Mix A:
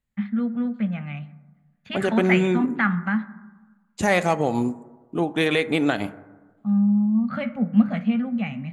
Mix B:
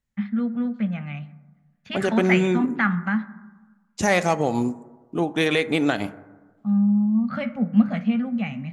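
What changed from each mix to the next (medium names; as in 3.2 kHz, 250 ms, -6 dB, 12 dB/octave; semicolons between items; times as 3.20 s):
master: add peaking EQ 5.6 kHz +10 dB 0.35 oct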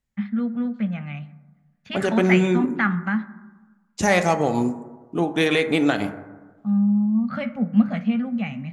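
second voice: send +6.5 dB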